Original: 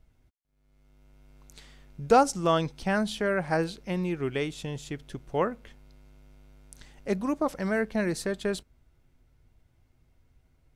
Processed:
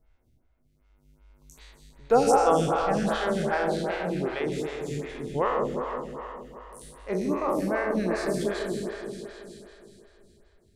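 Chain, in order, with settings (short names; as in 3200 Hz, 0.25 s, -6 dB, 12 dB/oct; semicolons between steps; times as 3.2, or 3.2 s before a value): spectral trails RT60 1.51 s; 4.47–4.95 tube stage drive 21 dB, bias 0.3; repeats that get brighter 0.159 s, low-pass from 750 Hz, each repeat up 1 oct, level -3 dB; photocell phaser 2.6 Hz; gain -1.5 dB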